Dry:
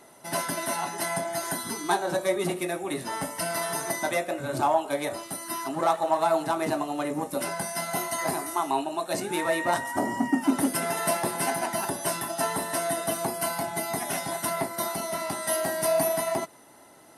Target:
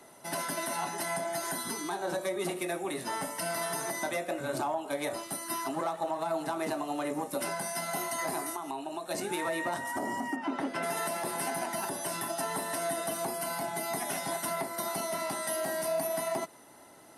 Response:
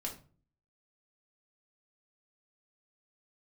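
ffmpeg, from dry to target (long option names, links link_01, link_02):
-filter_complex "[0:a]asplit=3[link_01][link_02][link_03];[link_01]afade=type=out:start_time=10.35:duration=0.02[link_04];[link_02]lowpass=3100,afade=type=in:start_time=10.35:duration=0.02,afade=type=out:start_time=10.82:duration=0.02[link_05];[link_03]afade=type=in:start_time=10.82:duration=0.02[link_06];[link_04][link_05][link_06]amix=inputs=3:normalize=0,acrossover=split=130|340[link_07][link_08][link_09];[link_07]acompressor=threshold=-59dB:ratio=4[link_10];[link_08]acompressor=threshold=-38dB:ratio=4[link_11];[link_09]acompressor=threshold=-27dB:ratio=4[link_12];[link_10][link_11][link_12]amix=inputs=3:normalize=0,alimiter=limit=-21dB:level=0:latency=1:release=69,asettb=1/sr,asplit=3[link_13][link_14][link_15];[link_13]atrim=end=8.504[link_16];[link_14]atrim=start=8.5:end=9.11,asetpts=PTS-STARTPTS,afade=type=in:duration=0.004:curve=qsin,afade=type=out:start_time=0.606:duration=0.004:curve=qsin,acompressor=threshold=-32dB:ratio=6[link_17];[link_15]atrim=start=9.106[link_18];[link_16][link_17]acrossfade=duration=0.004:curve1=hsin:curve2=qsin[link_19];[link_19][link_18]acrossfade=duration=0.004:curve1=qsin:curve2=hsin,volume=-1.5dB"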